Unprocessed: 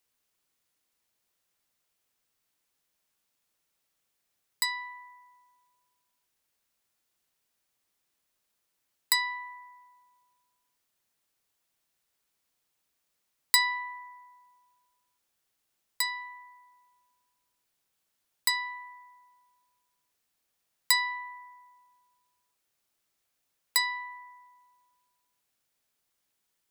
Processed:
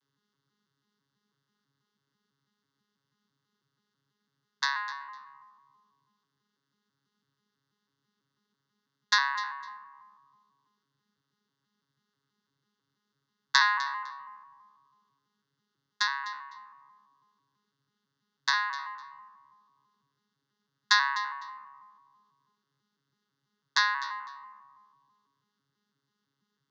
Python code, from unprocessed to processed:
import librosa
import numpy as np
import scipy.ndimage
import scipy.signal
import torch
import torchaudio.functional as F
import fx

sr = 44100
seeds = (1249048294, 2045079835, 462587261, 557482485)

y = fx.vocoder_arp(x, sr, chord='bare fifth', root=49, every_ms=164)
y = fx.fixed_phaser(y, sr, hz=2400.0, stages=6)
y = fx.echo_feedback(y, sr, ms=253, feedback_pct=19, wet_db=-15.5)
y = y * librosa.db_to_amplitude(6.0)